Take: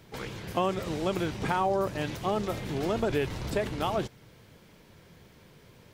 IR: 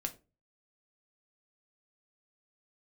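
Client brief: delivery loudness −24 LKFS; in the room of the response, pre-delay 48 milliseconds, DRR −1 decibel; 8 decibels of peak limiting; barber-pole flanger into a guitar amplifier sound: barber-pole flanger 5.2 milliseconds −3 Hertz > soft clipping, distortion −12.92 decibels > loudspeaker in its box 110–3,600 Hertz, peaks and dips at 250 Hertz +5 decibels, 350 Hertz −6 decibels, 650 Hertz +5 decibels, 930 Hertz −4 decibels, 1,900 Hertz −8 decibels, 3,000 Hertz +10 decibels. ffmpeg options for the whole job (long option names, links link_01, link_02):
-filter_complex "[0:a]alimiter=limit=-21.5dB:level=0:latency=1,asplit=2[link_01][link_02];[1:a]atrim=start_sample=2205,adelay=48[link_03];[link_02][link_03]afir=irnorm=-1:irlink=0,volume=1dB[link_04];[link_01][link_04]amix=inputs=2:normalize=0,asplit=2[link_05][link_06];[link_06]adelay=5.2,afreqshift=-3[link_07];[link_05][link_07]amix=inputs=2:normalize=1,asoftclip=threshold=-28dB,highpass=110,equalizer=frequency=250:width_type=q:width=4:gain=5,equalizer=frequency=350:width_type=q:width=4:gain=-6,equalizer=frequency=650:width_type=q:width=4:gain=5,equalizer=frequency=930:width_type=q:width=4:gain=-4,equalizer=frequency=1900:width_type=q:width=4:gain=-8,equalizer=frequency=3000:width_type=q:width=4:gain=10,lowpass=frequency=3600:width=0.5412,lowpass=frequency=3600:width=1.3066,volume=10.5dB"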